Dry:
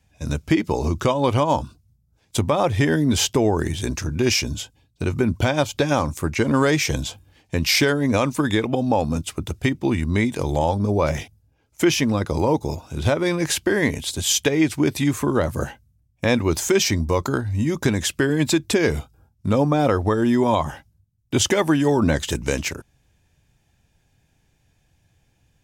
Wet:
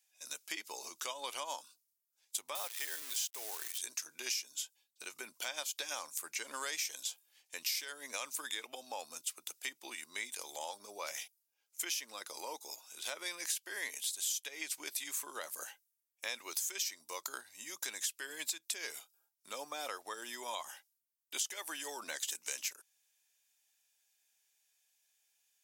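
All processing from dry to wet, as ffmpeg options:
-filter_complex "[0:a]asettb=1/sr,asplit=3[a][b][c];[a]atrim=end=2.554[d];[b]atrim=start=2.55:end=3.78,asetpts=PTS-STARTPTS,afade=t=in:d=0.004:c=qsin,afade=t=out:st=1.226:d=0.004:c=qsin,highpass=380,acrusher=bits=6:dc=4:mix=0:aa=0.000001[e];[c]atrim=start=3.776[f];[d][e]acrossfade=d=0.004:c1=hsin:c2=qsin[g];[g][f]acrossfade=d=0.004:c1=qsin:c2=hsin,highpass=430,aderivative,acompressor=threshold=-33dB:ratio=6,volume=-1.5dB"

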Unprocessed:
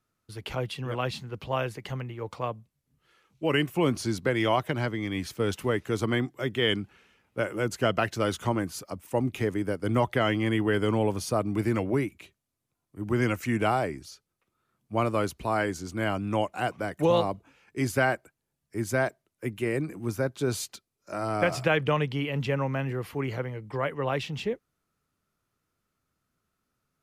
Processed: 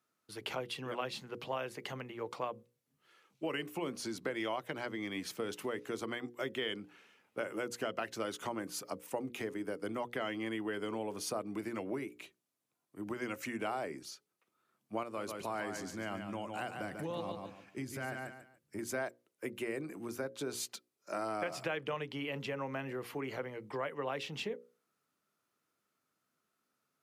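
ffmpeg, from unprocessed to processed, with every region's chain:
-filter_complex "[0:a]asettb=1/sr,asplit=3[a][b][c];[a]atrim=end=15.034[d];[b]atrim=start=15.03:end=18.79,asetpts=PTS-STARTPTS,afade=t=in:d=0.004:c=qsin,afade=t=out:st=3.756:d=0.004:c=qsin,asubboost=boost=5.5:cutoff=230,acompressor=threshold=-39dB:ratio=1.5:attack=3.2:release=140:knee=1:detection=peak,aecho=1:1:144|288|432:0.447|0.116|0.0302,atrim=end_sample=165816[e];[c]atrim=start=18.786[f];[d][e]acrossfade=d=0.004:c1=hsin:c2=qsin[g];[g][f]acrossfade=d=0.004:c1=qsin:c2=hsin,acompressor=threshold=-31dB:ratio=6,highpass=230,bandreject=f=60:t=h:w=6,bandreject=f=120:t=h:w=6,bandreject=f=180:t=h:w=6,bandreject=f=240:t=h:w=6,bandreject=f=300:t=h:w=6,bandreject=f=360:t=h:w=6,bandreject=f=420:t=h:w=6,bandreject=f=480:t=h:w=6,bandreject=f=540:t=h:w=6,volume=-1.5dB"

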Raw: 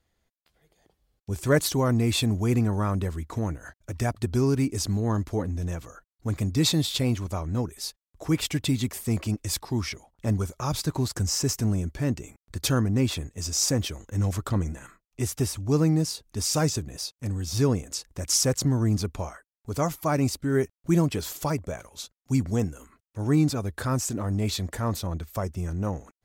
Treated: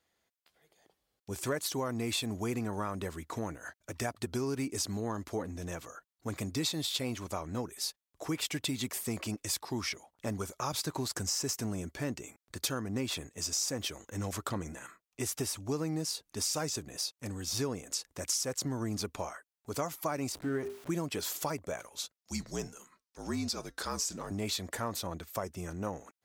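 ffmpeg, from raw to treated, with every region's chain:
-filter_complex "[0:a]asettb=1/sr,asplit=3[a][b][c];[a]atrim=end=20.324[d];[b]atrim=start=20.32:end=20.9,asetpts=PTS-STARTPTS,afade=t=in:d=0.004:c=qsin,afade=t=out:st=0.576:d=0.004:c=qsin,aeval=exprs='val(0)+0.5*0.015*sgn(val(0))':c=same,highshelf=f=2.7k:g=-11,bandreject=f=50:t=h:w=6,bandreject=f=100:t=h:w=6,bandreject=f=150:t=h:w=6,bandreject=f=200:t=h:w=6,bandreject=f=250:t=h:w=6,bandreject=f=300:t=h:w=6,bandreject=f=350:t=h:w=6,bandreject=f=400:t=h:w=6,bandreject=f=450:t=h:w=6[e];[c]atrim=start=20.896[f];[d][e]acrossfade=d=0.004:c1=hsin:c2=qsin[g];[g][f]acrossfade=d=0.004:c1=qsin:c2=hsin,asettb=1/sr,asplit=3[h][i][j];[h]atrim=end=22.174[k];[i]atrim=start=22.17:end=24.31,asetpts=PTS-STARTPTS,afade=t=in:d=0.004:c=qsin,afade=t=out:st=2.136:d=0.004:c=qsin,equalizer=f=5.1k:w=1.4:g=10,flanger=delay=4.5:depth=3.2:regen=-85:speed=1.3:shape=sinusoidal,afreqshift=-53[l];[j]atrim=start=24.306[m];[k][l]acrossfade=d=0.004:c1=hsin:c2=qsin[n];[n][m]acrossfade=d=0.004:c1=qsin:c2=hsin,highpass=f=420:p=1,acompressor=threshold=-30dB:ratio=6"

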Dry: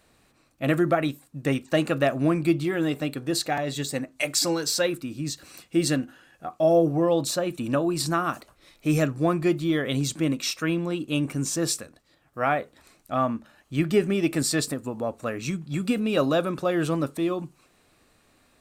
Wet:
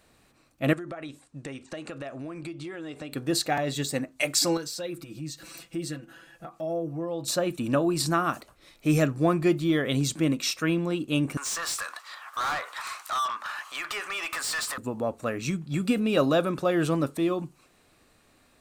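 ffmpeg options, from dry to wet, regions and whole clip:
-filter_complex "[0:a]asettb=1/sr,asplit=3[a][b][c];[a]atrim=end=0.734[d];[b]atrim=start=0.73:end=3.13,asetpts=PTS-STARTPTS,afade=t=in:d=0.004:c=qsin,afade=t=out:st=2.396:d=0.004:c=qsin,lowpass=f=9.1k:w=0.5412,lowpass=f=9.1k:w=1.3066,equalizer=f=170:t=o:w=1.2:g=-6.5,acompressor=threshold=-34dB:ratio=8:attack=3.2:release=140:knee=1:detection=peak[e];[c]atrim=start=3.126[f];[d][e]acrossfade=d=0.004:c1=hsin:c2=qsin[g];[g][f]acrossfade=d=0.004:c1=qsin:c2=hsin,asettb=1/sr,asplit=3[h][i][j];[h]atrim=end=4.574[k];[i]atrim=start=4.57:end=7.28,asetpts=PTS-STARTPTS,afade=t=in:d=0.004:c=qsin,afade=t=out:st=2.706:d=0.004:c=qsin,acompressor=threshold=-42dB:ratio=2.5:attack=3.2:release=140:knee=1:detection=peak,aecho=1:1:6:0.96,atrim=end_sample=119511[l];[j]atrim=start=7.276[m];[k][l]acrossfade=d=0.004:c1=hsin:c2=qsin[n];[n][m]acrossfade=d=0.004:c1=qsin:c2=hsin,asettb=1/sr,asplit=3[o][p][q];[o]atrim=end=11.374[r];[p]atrim=start=11.37:end=14.78,asetpts=PTS-STARTPTS,afade=t=in:d=0.004:c=qsin,afade=t=out:st=3.406:d=0.004:c=qsin,acompressor=threshold=-41dB:ratio=2.5:attack=3.2:release=140:knee=1:detection=peak,highpass=f=1.1k:t=q:w=3.4,asplit=2[s][t];[t]highpass=f=720:p=1,volume=26dB,asoftclip=type=tanh:threshold=-22dB[u];[s][u]amix=inputs=2:normalize=0,lowpass=f=7.8k:p=1,volume=-6dB[v];[q]atrim=start=14.776[w];[r][v]acrossfade=d=0.004:c1=hsin:c2=qsin[x];[x][w]acrossfade=d=0.004:c1=qsin:c2=hsin"

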